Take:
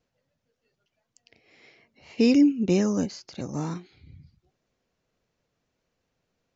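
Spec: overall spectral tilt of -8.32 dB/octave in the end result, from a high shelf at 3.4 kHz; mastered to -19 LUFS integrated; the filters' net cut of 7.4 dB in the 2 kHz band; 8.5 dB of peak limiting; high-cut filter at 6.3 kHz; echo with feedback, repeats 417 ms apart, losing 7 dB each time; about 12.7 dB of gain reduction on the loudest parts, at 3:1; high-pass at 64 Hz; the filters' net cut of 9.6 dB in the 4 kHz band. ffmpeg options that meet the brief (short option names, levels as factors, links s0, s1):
-af "highpass=64,lowpass=6300,equalizer=f=2000:t=o:g=-5,highshelf=f=3400:g=-3.5,equalizer=f=4000:t=o:g=-8,acompressor=threshold=0.0224:ratio=3,alimiter=level_in=1.88:limit=0.0631:level=0:latency=1,volume=0.531,aecho=1:1:417|834|1251|1668|2085:0.447|0.201|0.0905|0.0407|0.0183,volume=10"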